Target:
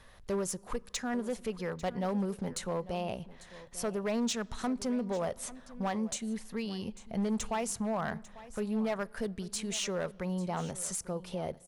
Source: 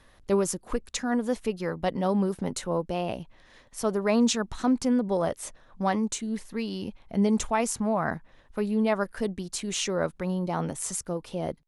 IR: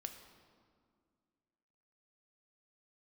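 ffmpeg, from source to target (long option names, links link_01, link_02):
-filter_complex "[0:a]equalizer=frequency=300:width=4.5:gain=-11,acompressor=threshold=-42dB:ratio=1.5,asoftclip=type=hard:threshold=-28dB,aecho=1:1:846:0.133,asplit=2[link_01][link_02];[1:a]atrim=start_sample=2205[link_03];[link_02][link_03]afir=irnorm=-1:irlink=0,volume=-13dB[link_04];[link_01][link_04]amix=inputs=2:normalize=0"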